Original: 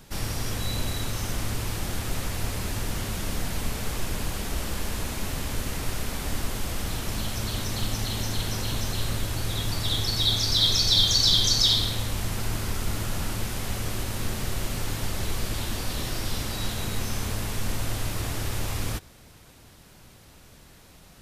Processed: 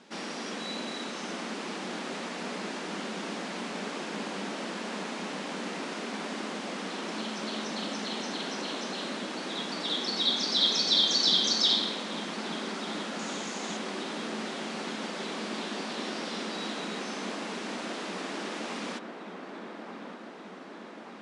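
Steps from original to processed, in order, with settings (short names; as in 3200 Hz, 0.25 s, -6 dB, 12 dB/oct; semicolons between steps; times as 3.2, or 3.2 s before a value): 13.19–13.77 bell 6700 Hz +11.5 dB 0.35 oct; brick-wall FIR band-pass 180–11000 Hz; air absorption 110 m; dark delay 1.184 s, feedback 69%, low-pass 1700 Hz, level -6.5 dB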